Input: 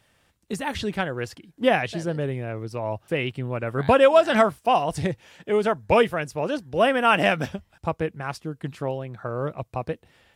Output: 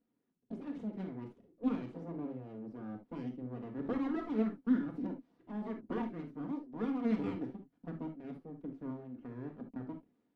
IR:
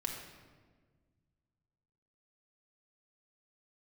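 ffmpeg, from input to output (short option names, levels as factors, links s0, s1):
-filter_complex "[0:a]aeval=exprs='abs(val(0))':c=same,bandpass=f=270:t=q:w=2.8:csg=0[s0];[1:a]atrim=start_sample=2205,atrim=end_sample=3528[s1];[s0][s1]afir=irnorm=-1:irlink=0,volume=0.841"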